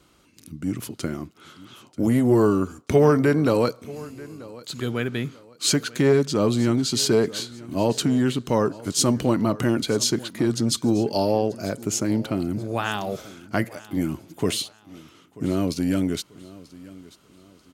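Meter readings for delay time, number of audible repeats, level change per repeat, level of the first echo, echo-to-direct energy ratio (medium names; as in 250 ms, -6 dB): 937 ms, 2, -9.5 dB, -20.0 dB, -19.5 dB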